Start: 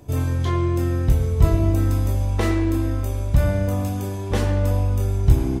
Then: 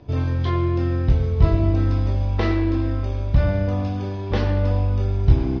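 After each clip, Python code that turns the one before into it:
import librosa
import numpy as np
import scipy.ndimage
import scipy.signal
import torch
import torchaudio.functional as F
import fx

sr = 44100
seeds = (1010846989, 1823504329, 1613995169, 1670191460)

y = scipy.signal.sosfilt(scipy.signal.butter(8, 5200.0, 'lowpass', fs=sr, output='sos'), x)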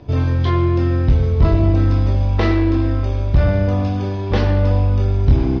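y = 10.0 ** (-10.0 / 20.0) * np.tanh(x / 10.0 ** (-10.0 / 20.0))
y = y * librosa.db_to_amplitude(5.5)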